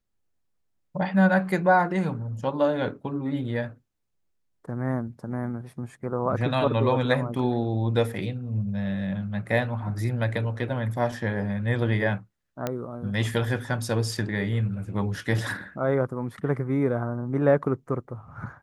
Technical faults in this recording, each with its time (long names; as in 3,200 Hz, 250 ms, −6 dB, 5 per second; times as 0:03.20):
0:12.67: click −13 dBFS